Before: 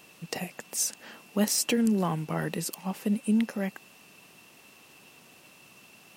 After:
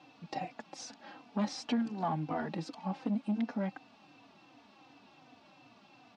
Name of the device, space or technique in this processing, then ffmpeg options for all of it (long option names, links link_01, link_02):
barber-pole flanger into a guitar amplifier: -filter_complex "[0:a]asplit=2[link_01][link_02];[link_02]adelay=3.3,afreqshift=-2.7[link_03];[link_01][link_03]amix=inputs=2:normalize=1,asoftclip=type=tanh:threshold=-25.5dB,highpass=76,equalizer=frequency=170:width_type=q:width=4:gain=-4,equalizer=frequency=280:width_type=q:width=4:gain=9,equalizer=frequency=410:width_type=q:width=4:gain=-8,equalizer=frequency=790:width_type=q:width=4:gain=8,equalizer=frequency=1900:width_type=q:width=4:gain=-5,equalizer=frequency=2800:width_type=q:width=4:gain=-8,lowpass=frequency=4400:width=0.5412,lowpass=frequency=4400:width=1.3066"